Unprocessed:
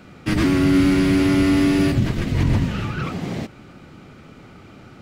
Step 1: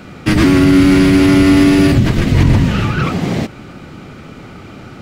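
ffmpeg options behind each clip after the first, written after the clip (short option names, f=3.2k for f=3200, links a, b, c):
-af "alimiter=level_in=11dB:limit=-1dB:release=50:level=0:latency=1,volume=-1dB"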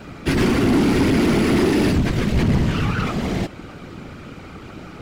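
-filter_complex "[0:a]asplit=2[a][b];[b]aeval=exprs='0.119*(abs(mod(val(0)/0.119+3,4)-2)-1)':c=same,volume=-8dB[c];[a][c]amix=inputs=2:normalize=0,afftfilt=real='hypot(re,im)*cos(2*PI*random(0))':imag='hypot(re,im)*sin(2*PI*random(1))':win_size=512:overlap=0.75,asoftclip=type=hard:threshold=-12.5dB"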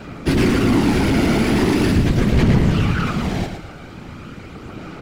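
-af "aphaser=in_gain=1:out_gain=1:delay=1.4:decay=0.27:speed=0.41:type=sinusoidal,aecho=1:1:112|224|336|448:0.422|0.148|0.0517|0.0181"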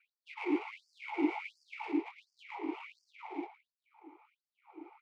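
-filter_complex "[0:a]adynamicsmooth=sensitivity=2:basefreq=970,asplit=3[a][b][c];[a]bandpass=f=300:t=q:w=8,volume=0dB[d];[b]bandpass=f=870:t=q:w=8,volume=-6dB[e];[c]bandpass=f=2.24k:t=q:w=8,volume=-9dB[f];[d][e][f]amix=inputs=3:normalize=0,afftfilt=real='re*gte(b*sr/1024,290*pow(4600/290,0.5+0.5*sin(2*PI*1.4*pts/sr)))':imag='im*gte(b*sr/1024,290*pow(4600/290,0.5+0.5*sin(2*PI*1.4*pts/sr)))':win_size=1024:overlap=0.75"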